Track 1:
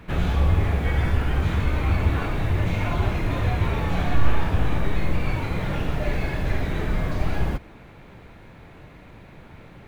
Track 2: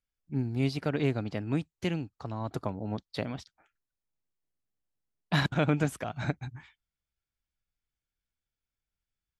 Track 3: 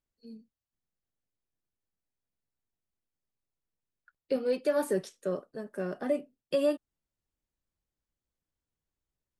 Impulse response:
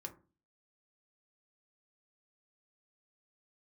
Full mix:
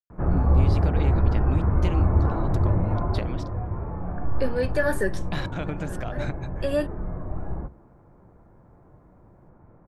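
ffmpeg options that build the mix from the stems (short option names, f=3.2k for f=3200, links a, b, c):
-filter_complex "[0:a]lowpass=f=1.2k:w=0.5412,lowpass=f=1.2k:w=1.3066,adelay=100,volume=-1.5dB,afade=t=out:st=2.8:d=0.67:silence=0.398107,asplit=2[a][b];[b]volume=-6dB[c];[1:a]agate=range=-33dB:threshold=-59dB:ratio=3:detection=peak,acompressor=threshold=-29dB:ratio=5,volume=-0.5dB,asplit=3[d][e][f];[e]volume=-7dB[g];[2:a]equalizer=f=1.7k:w=3.8:g=15,adelay=100,volume=2.5dB[h];[f]apad=whole_len=418569[i];[h][i]sidechaincompress=threshold=-43dB:ratio=8:attack=10:release=390[j];[3:a]atrim=start_sample=2205[k];[c][g]amix=inputs=2:normalize=0[l];[l][k]afir=irnorm=-1:irlink=0[m];[a][d][j][m]amix=inputs=4:normalize=0"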